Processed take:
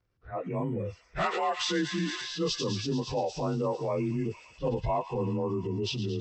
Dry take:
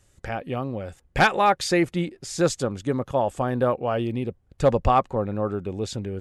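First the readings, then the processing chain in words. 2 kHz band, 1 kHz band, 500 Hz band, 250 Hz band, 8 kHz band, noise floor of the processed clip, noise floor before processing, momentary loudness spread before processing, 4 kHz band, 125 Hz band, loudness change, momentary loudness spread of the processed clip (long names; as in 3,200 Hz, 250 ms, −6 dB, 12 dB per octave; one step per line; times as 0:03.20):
−10.0 dB, −10.0 dB, −7.0 dB, −5.0 dB, −6.0 dB, −63 dBFS, −63 dBFS, 11 LU, 0.0 dB, −4.5 dB, −7.0 dB, 6 LU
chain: partials spread apart or drawn together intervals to 90%
low-pass that shuts in the quiet parts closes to 2,100 Hz, open at −20.5 dBFS
high-shelf EQ 5,400 Hz +4 dB
on a send: delay with a high-pass on its return 113 ms, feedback 80%, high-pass 2,000 Hz, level −7.5 dB
on the sum: transient designer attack −9 dB, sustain +4 dB
downward compressor 5 to 1, threshold −28 dBFS, peak gain reduction 10.5 dB
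noise reduction from a noise print of the clip's start 14 dB
level +2 dB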